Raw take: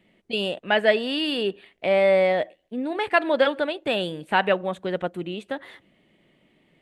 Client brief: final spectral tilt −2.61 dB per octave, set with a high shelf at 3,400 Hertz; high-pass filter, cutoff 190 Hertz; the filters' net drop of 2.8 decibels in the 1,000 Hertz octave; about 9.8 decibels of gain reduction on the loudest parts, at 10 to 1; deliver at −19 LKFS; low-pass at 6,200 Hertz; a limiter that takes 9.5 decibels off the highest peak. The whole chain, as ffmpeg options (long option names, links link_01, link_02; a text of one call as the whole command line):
ffmpeg -i in.wav -af "highpass=190,lowpass=6200,equalizer=frequency=1000:width_type=o:gain=-3.5,highshelf=frequency=3400:gain=-4.5,acompressor=threshold=-25dB:ratio=10,volume=14dB,alimiter=limit=-8.5dB:level=0:latency=1" out.wav